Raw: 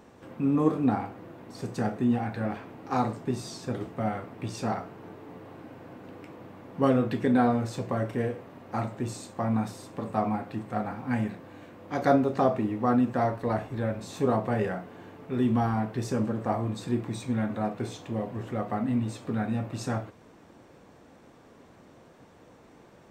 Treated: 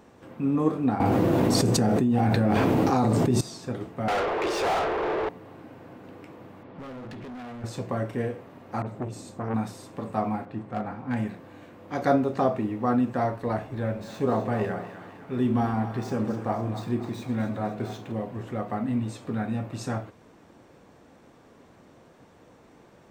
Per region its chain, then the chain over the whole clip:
0:01.00–0:03.41: parametric band 1,600 Hz −7 dB 2.1 octaves + envelope flattener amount 100%
0:04.08–0:05.29: Chebyshev high-pass filter 350 Hz, order 6 + spectral tilt −3.5 dB per octave + mid-hump overdrive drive 36 dB, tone 2,700 Hz, clips at −18.5 dBFS
0:06.63–0:07.64: low-pass filter 4,300 Hz 24 dB per octave + downward compressor 12 to 1, threshold −27 dBFS + hard clipping −37.5 dBFS
0:08.82–0:09.54: tilt shelving filter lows +4 dB, about 650 Hz + all-pass dispersion highs, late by 46 ms, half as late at 2,100 Hz + saturating transformer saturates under 720 Hz
0:10.45–0:11.17: low-pass filter 3,200 Hz 6 dB per octave + hard clipping −21 dBFS + one half of a high-frequency compander decoder only
0:13.59–0:18.12: running median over 5 samples + echo with a time of its own for lows and highs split 700 Hz, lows 89 ms, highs 255 ms, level −10 dB
whole clip: no processing

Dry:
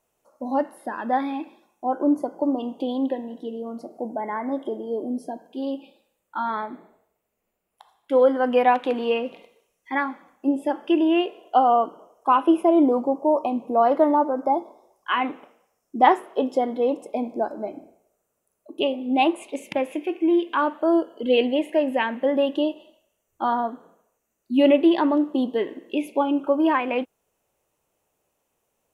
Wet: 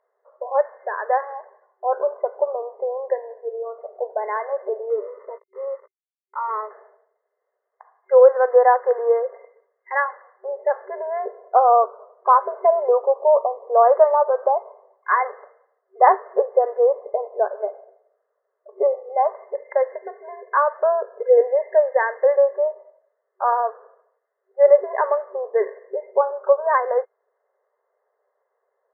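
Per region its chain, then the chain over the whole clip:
0:04.90–0:06.71: hold until the input has moved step −40 dBFS + phaser with its sweep stopped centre 1,100 Hz, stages 8 + double-tracking delay 17 ms −11.5 dB
whole clip: brick-wall band-pass 380–2,100 Hz; treble cut that deepens with the level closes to 1,600 Hz, closed at −17.5 dBFS; comb filter 1.8 ms, depth 32%; level +4 dB

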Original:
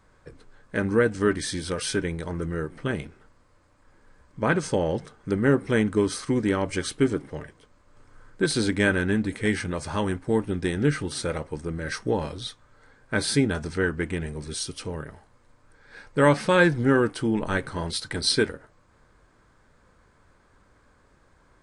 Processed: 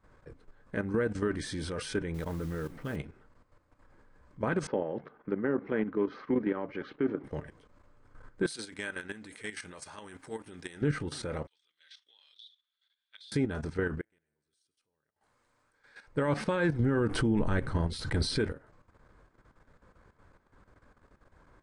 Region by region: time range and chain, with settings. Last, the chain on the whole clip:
0:02.14–0:02.96: notch filter 370 Hz, Q 7.8 + noise that follows the level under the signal 16 dB
0:04.67–0:07.24: Butterworth low-pass 5,500 Hz + three-way crossover with the lows and the highs turned down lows −23 dB, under 170 Hz, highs −21 dB, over 2,700 Hz
0:08.46–0:10.82: spectral tilt +4 dB per octave + downward compressor 2.5 to 1, threshold −37 dBFS
0:11.47–0:13.32: four-pole ladder band-pass 3,600 Hz, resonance 85% + downward compressor 16 to 1, threshold −42 dBFS
0:14.01–0:16.08: spectral tilt +3 dB per octave + gate with flip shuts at −30 dBFS, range −33 dB + tuned comb filter 110 Hz, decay 2 s, mix 50%
0:16.80–0:18.52: low-shelf EQ 140 Hz +11.5 dB + background raised ahead of every attack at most 35 dB per second
whole clip: output level in coarse steps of 12 dB; brickwall limiter −20.5 dBFS; high-shelf EQ 3,200 Hz −9.5 dB; level +1.5 dB

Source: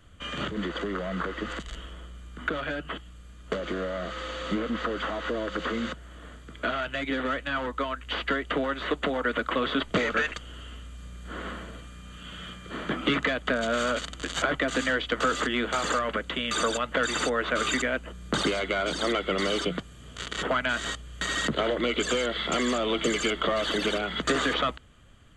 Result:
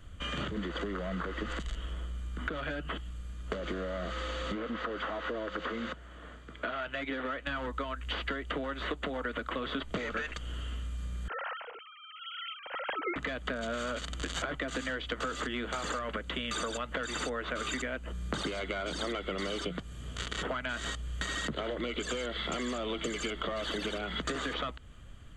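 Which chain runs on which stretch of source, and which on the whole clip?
0:04.52–0:07.47: low-pass filter 2,700 Hz 6 dB per octave + low-shelf EQ 220 Hz −11.5 dB
0:11.28–0:13.16: three sine waves on the formant tracks + parametric band 390 Hz −6 dB 0.22 octaves
whole clip: low-shelf EQ 95 Hz +9 dB; downward compressor 6 to 1, threshold −32 dBFS

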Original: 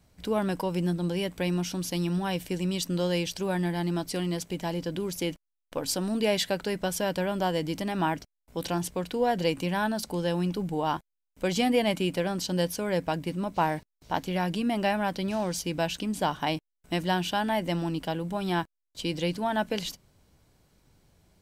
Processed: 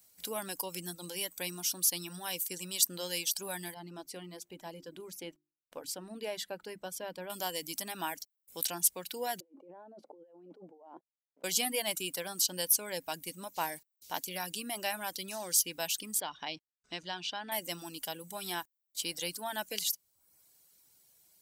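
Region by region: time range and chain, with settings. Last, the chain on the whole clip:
0:03.74–0:07.30: low-pass filter 1,000 Hz 6 dB per octave + mains-hum notches 50/100/150/200/250/300/350 Hz
0:09.40–0:11.44: flat-topped band-pass 440 Hz, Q 1.1 + compressor whose output falls as the input rises −41 dBFS
0:16.20–0:17.52: low-pass filter 4,900 Hz 24 dB per octave + downward compressor 1.5 to 1, threshold −31 dBFS
whole clip: RIAA equalisation recording; reverb reduction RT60 0.66 s; high-shelf EQ 5,500 Hz +8.5 dB; level −8.5 dB

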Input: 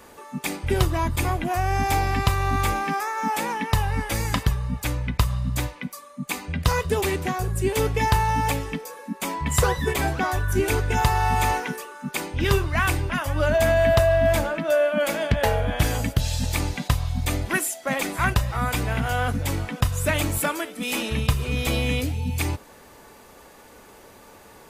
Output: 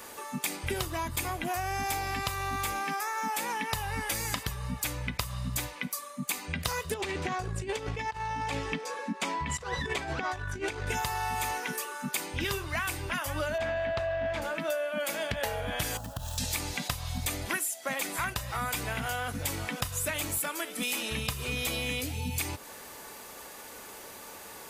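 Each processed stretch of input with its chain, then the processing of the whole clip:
0:06.94–0:10.87: high-frequency loss of the air 110 metres + compressor whose output falls as the input rises −26 dBFS, ratio −0.5
0:13.58–0:14.42: low-pass filter 3,400 Hz + highs frequency-modulated by the lows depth 0.19 ms
0:15.97–0:16.38: running median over 9 samples + phaser with its sweep stopped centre 910 Hz, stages 4 + downward compressor 5 to 1, threshold −27 dBFS
whole clip: spectral tilt +2 dB per octave; downward compressor 6 to 1, threshold −31 dBFS; level +1.5 dB

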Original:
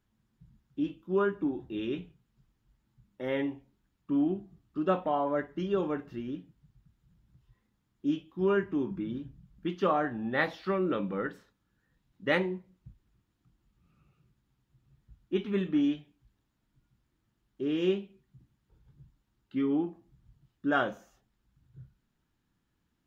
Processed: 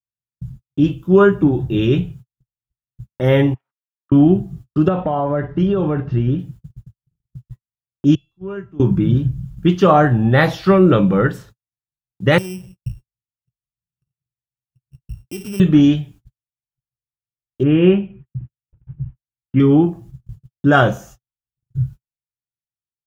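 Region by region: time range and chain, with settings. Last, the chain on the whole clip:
0:03.54–0:04.12: output level in coarse steps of 10 dB + four-pole ladder band-pass 1,400 Hz, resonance 60% + multiband upward and downward expander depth 70%
0:04.88–0:06.39: downward compressor, threshold −31 dBFS + high-frequency loss of the air 210 metres
0:08.15–0:08.80: low-pass filter 3,400 Hz 6 dB per octave + tuned comb filter 680 Hz, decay 0.48 s, mix 90% + multiband upward and downward expander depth 100%
0:12.38–0:15.60: samples sorted by size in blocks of 16 samples + downward compressor 4 to 1, threshold −47 dBFS
0:17.63–0:19.60: Butterworth low-pass 2,800 Hz 48 dB per octave + notch filter 410 Hz, Q 6.6
whole clip: noise gate −59 dBFS, range −54 dB; octave-band graphic EQ 125/250/500/1,000/2,000/4,000 Hz +10/−10/−4/−6/−8/−6 dB; boost into a limiter +24.5 dB; level −1 dB

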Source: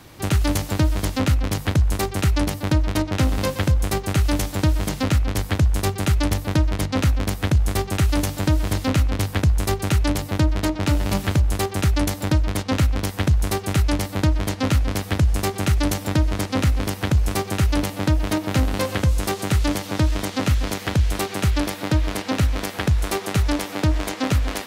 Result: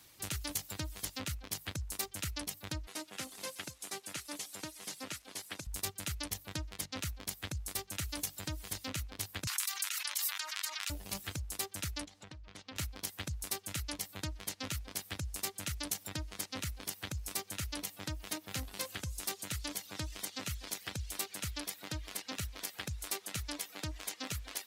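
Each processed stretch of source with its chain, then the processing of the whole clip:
0:02.87–0:05.67: linear delta modulator 64 kbit/s, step −33 dBFS + high-pass filter 230 Hz
0:09.47–0:10.90: high-pass filter 1,100 Hz 24 dB per octave + envelope flattener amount 100%
0:12.05–0:12.76: downward compressor 5 to 1, threshold −25 dBFS + high-frequency loss of the air 91 metres + highs frequency-modulated by the lows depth 0.18 ms
whole clip: first-order pre-emphasis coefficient 0.9; reverb reduction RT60 1 s; high-shelf EQ 7,200 Hz −6.5 dB; level −2.5 dB

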